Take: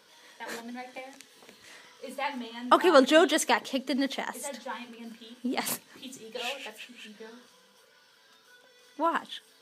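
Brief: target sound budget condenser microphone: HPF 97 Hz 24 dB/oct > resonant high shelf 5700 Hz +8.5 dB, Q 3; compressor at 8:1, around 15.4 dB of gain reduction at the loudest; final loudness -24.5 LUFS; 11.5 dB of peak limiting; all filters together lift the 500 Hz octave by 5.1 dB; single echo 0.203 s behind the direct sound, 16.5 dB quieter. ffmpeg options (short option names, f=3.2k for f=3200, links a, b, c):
-af "equalizer=f=500:t=o:g=6.5,acompressor=threshold=-25dB:ratio=8,alimiter=limit=-23.5dB:level=0:latency=1,highpass=f=97:w=0.5412,highpass=f=97:w=1.3066,highshelf=f=5.7k:t=q:w=3:g=8.5,aecho=1:1:203:0.15,volume=8dB"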